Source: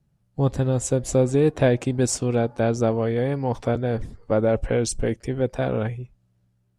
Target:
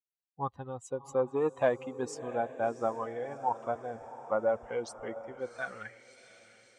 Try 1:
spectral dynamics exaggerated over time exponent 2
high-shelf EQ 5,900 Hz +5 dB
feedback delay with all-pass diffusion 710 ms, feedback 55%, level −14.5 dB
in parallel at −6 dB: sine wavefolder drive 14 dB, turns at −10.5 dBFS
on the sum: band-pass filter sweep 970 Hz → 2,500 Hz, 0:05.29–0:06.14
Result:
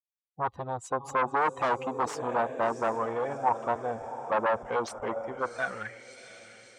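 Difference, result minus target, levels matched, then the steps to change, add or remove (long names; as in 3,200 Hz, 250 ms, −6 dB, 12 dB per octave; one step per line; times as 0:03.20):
sine wavefolder: distortion +23 dB
change: sine wavefolder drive 2 dB, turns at −10.5 dBFS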